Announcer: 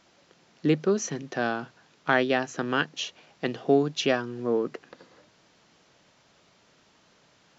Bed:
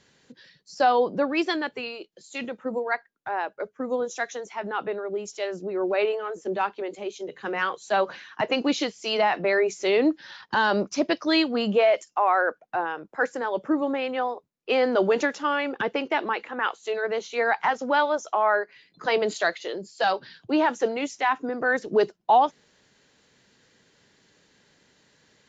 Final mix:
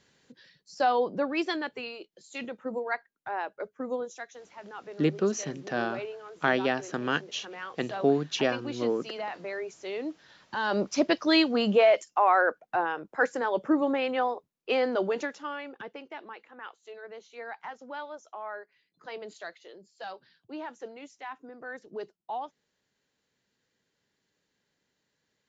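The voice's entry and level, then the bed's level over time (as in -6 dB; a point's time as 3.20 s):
4.35 s, -2.5 dB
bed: 3.92 s -4.5 dB
4.28 s -13.5 dB
10.44 s -13.5 dB
10.86 s -0.5 dB
14.43 s -0.5 dB
16.07 s -17 dB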